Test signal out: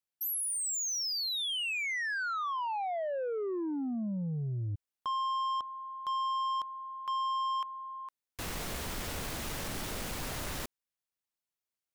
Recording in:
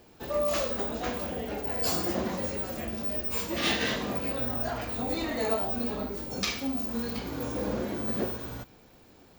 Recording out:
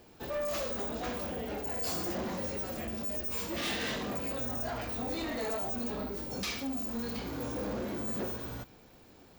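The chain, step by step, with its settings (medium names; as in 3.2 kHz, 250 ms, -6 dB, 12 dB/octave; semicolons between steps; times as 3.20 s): saturation -29.5 dBFS; trim -1 dB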